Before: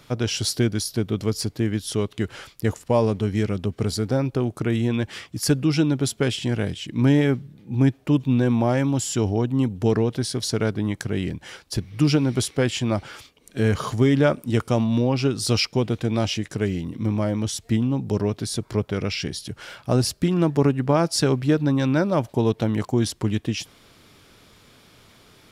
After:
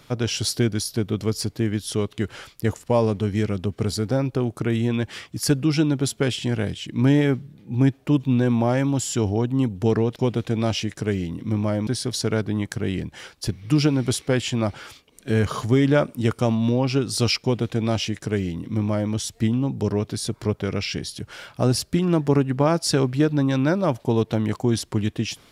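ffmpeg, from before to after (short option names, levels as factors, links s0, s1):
-filter_complex "[0:a]asplit=3[s0][s1][s2];[s0]atrim=end=10.162[s3];[s1]atrim=start=15.698:end=17.412[s4];[s2]atrim=start=10.158[s5];[s3][s4]acrossfade=d=0.004:c1=hsin:c2=hsin[s6];[s6][s5]acrossfade=d=0.004:c1=hsin:c2=hsin"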